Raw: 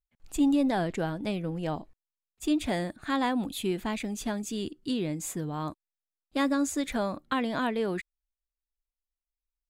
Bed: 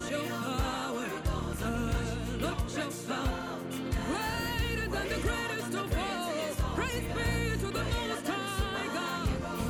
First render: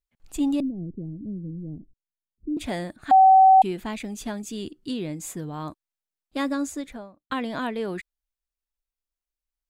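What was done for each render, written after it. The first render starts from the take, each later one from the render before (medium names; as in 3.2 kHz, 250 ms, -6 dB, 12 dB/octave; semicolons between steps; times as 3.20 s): 0.60–2.57 s: inverse Chebyshev low-pass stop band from 1.4 kHz, stop band 70 dB; 3.11–3.62 s: bleep 763 Hz -10 dBFS; 6.55–7.30 s: studio fade out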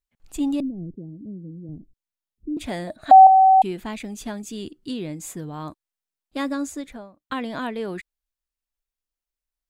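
0.94–1.69 s: high-pass 190 Hz 6 dB/octave; 2.87–3.27 s: small resonant body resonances 630/3900 Hz, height 17 dB, ringing for 35 ms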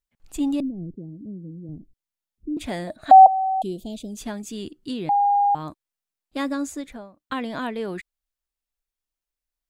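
3.26–4.17 s: elliptic band-stop 640–3300 Hz, stop band 50 dB; 5.09–5.55 s: bleep 811 Hz -15.5 dBFS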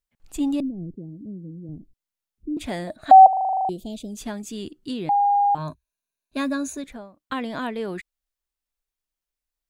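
3.29 s: stutter in place 0.04 s, 10 plays; 5.57–6.84 s: rippled EQ curve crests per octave 1.5, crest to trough 12 dB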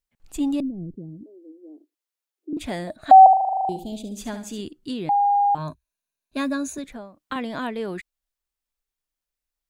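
1.23–2.53 s: steep high-pass 300 Hz 72 dB/octave; 3.19–4.61 s: flutter echo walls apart 12 m, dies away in 0.44 s; 6.78–7.36 s: three bands compressed up and down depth 40%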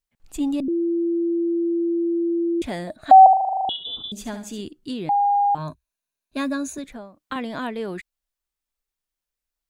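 0.68–2.62 s: bleep 339 Hz -19 dBFS; 3.69–4.12 s: frequency inversion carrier 3.7 kHz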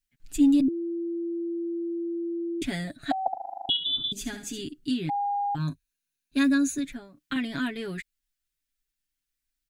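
high-order bell 720 Hz -12.5 dB; comb 7.2 ms, depth 73%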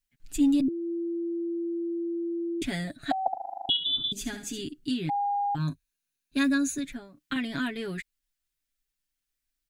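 dynamic bell 290 Hz, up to -3 dB, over -31 dBFS, Q 2.5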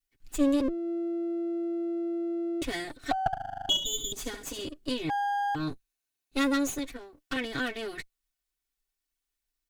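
comb filter that takes the minimum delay 2.7 ms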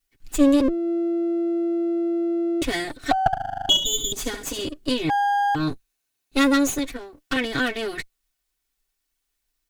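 trim +8 dB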